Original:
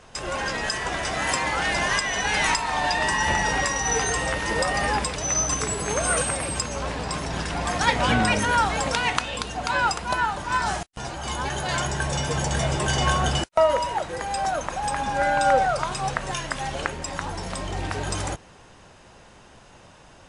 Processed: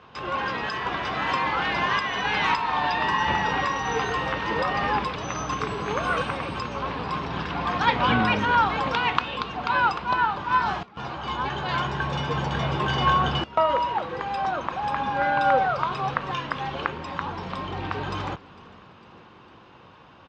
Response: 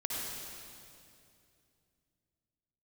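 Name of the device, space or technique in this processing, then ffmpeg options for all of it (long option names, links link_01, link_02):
frequency-shifting delay pedal into a guitar cabinet: -filter_complex "[0:a]asplit=6[link_01][link_02][link_03][link_04][link_05][link_06];[link_02]adelay=453,afreqshift=-140,volume=-21.5dB[link_07];[link_03]adelay=906,afreqshift=-280,volume=-25.8dB[link_08];[link_04]adelay=1359,afreqshift=-420,volume=-30.1dB[link_09];[link_05]adelay=1812,afreqshift=-560,volume=-34.4dB[link_10];[link_06]adelay=2265,afreqshift=-700,volume=-38.7dB[link_11];[link_01][link_07][link_08][link_09][link_10][link_11]amix=inputs=6:normalize=0,highpass=93,equalizer=frequency=630:width_type=q:width=4:gain=-6,equalizer=frequency=1100:width_type=q:width=4:gain=6,equalizer=frequency=1900:width_type=q:width=4:gain=-4,lowpass=frequency=3800:width=0.5412,lowpass=frequency=3800:width=1.3066"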